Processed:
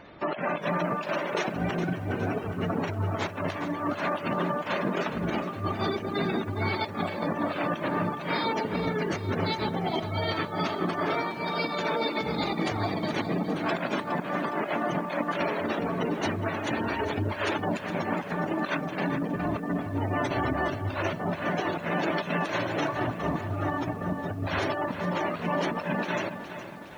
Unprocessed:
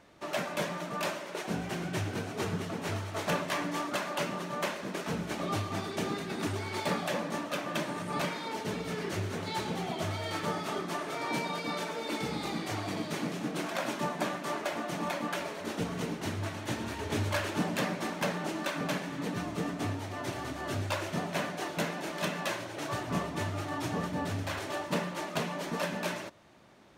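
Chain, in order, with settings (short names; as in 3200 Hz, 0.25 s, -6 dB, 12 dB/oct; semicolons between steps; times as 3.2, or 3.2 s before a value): spectral gate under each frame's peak -20 dB strong; 15.73–17.77 low shelf 190 Hz -11.5 dB; negative-ratio compressor -37 dBFS, ratio -0.5; lo-fi delay 0.413 s, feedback 55%, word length 10-bit, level -10.5 dB; gain +8 dB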